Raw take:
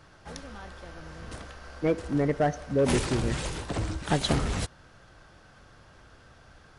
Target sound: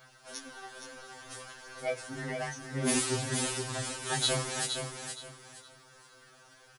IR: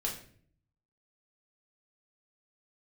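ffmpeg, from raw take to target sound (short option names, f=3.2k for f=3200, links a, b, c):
-filter_complex "[0:a]aemphasis=mode=production:type=bsi,flanger=delay=15.5:depth=5.9:speed=0.57,asplit=2[a][b];[b]aecho=0:1:468|936|1404|1872:0.473|0.132|0.0371|0.0104[c];[a][c]amix=inputs=2:normalize=0,afftfilt=real='re*2.45*eq(mod(b,6),0)':imag='im*2.45*eq(mod(b,6),0)':win_size=2048:overlap=0.75,volume=2dB"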